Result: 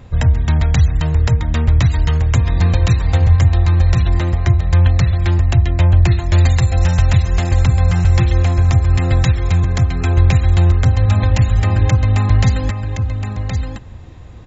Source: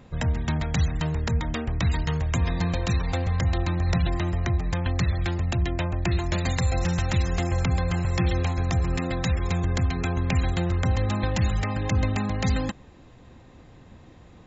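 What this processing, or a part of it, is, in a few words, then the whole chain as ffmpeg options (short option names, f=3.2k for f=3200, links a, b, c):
car stereo with a boomy subwoofer: -af "lowshelf=f=130:t=q:w=1.5:g=7.5,alimiter=limit=-11dB:level=0:latency=1:release=282,aecho=1:1:1069:0.447,volume=6.5dB"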